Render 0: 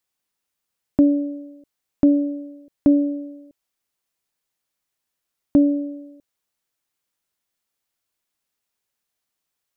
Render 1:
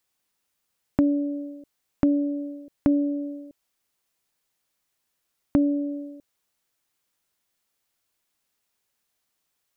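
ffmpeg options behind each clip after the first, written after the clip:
ffmpeg -i in.wav -af "acompressor=threshold=-29dB:ratio=2,volume=3.5dB" out.wav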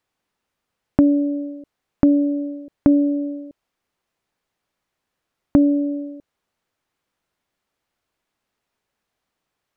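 ffmpeg -i in.wav -af "lowpass=frequency=1600:poles=1,volume=6.5dB" out.wav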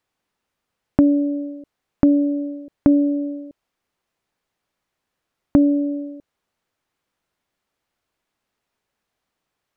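ffmpeg -i in.wav -af anull out.wav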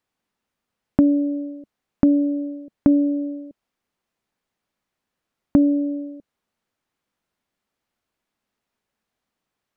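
ffmpeg -i in.wav -af "equalizer=frequency=220:width=2.5:gain=5,volume=-3dB" out.wav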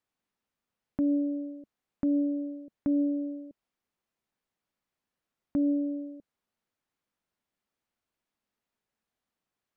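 ffmpeg -i in.wav -af "alimiter=limit=-14dB:level=0:latency=1:release=26,volume=-7dB" out.wav

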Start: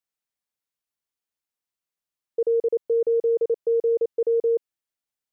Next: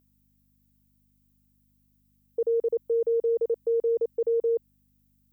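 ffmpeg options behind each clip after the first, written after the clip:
ffmpeg -i in.wav -af "aeval=exprs='val(0)+0.00178*(sin(2*PI*50*n/s)+sin(2*PI*2*50*n/s)/2+sin(2*PI*3*50*n/s)/3+sin(2*PI*4*50*n/s)/4+sin(2*PI*5*50*n/s)/5)':channel_layout=same,aemphasis=mode=production:type=bsi,volume=-1.5dB" out.wav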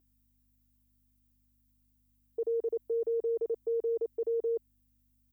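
ffmpeg -i in.wav -af "aecho=1:1:2.9:0.91,volume=-6dB" out.wav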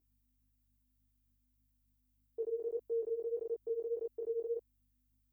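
ffmpeg -i in.wav -af "flanger=delay=17:depth=6.6:speed=1.7,volume=-3dB" out.wav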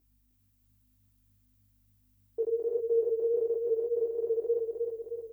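ffmpeg -i in.wav -af "aecho=1:1:310|620|930|1240|1550|1860|2170|2480:0.631|0.353|0.198|0.111|0.0621|0.0347|0.0195|0.0109,volume=7.5dB" out.wav

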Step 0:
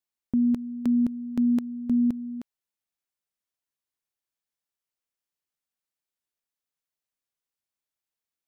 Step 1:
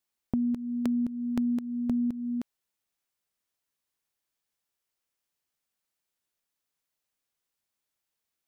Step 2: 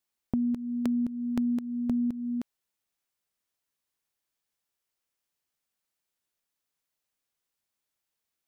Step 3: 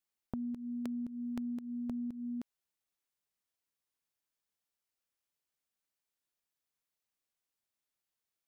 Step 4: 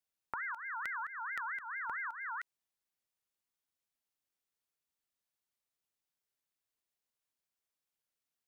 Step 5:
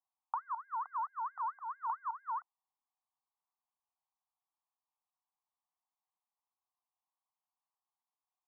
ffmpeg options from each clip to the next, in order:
ffmpeg -i in.wav -af "acompressor=threshold=-32dB:ratio=5,volume=5dB" out.wav
ffmpeg -i in.wav -af anull out.wav
ffmpeg -i in.wav -af "acompressor=threshold=-31dB:ratio=4,volume=-5.5dB" out.wav
ffmpeg -i in.wav -af "aeval=exprs='val(0)*sin(2*PI*1500*n/s+1500*0.25/4.5*sin(2*PI*4.5*n/s))':channel_layout=same,volume=1dB" out.wav
ffmpeg -i in.wav -af "asuperpass=centerf=920:order=8:qfactor=2,volume=7.5dB" out.wav

